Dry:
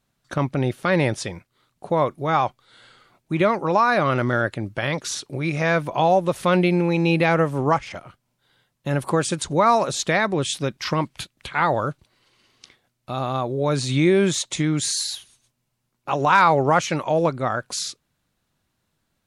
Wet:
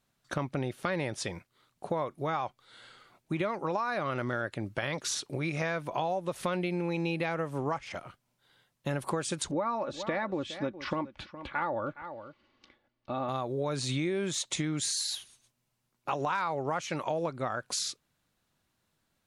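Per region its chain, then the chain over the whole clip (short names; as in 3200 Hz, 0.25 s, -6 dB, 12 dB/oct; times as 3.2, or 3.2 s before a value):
9.51–13.29 tape spacing loss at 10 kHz 30 dB + comb 3.5 ms, depth 54% + echo 0.414 s -18 dB
whole clip: low shelf 230 Hz -4 dB; compressor, threshold -26 dBFS; gain -2.5 dB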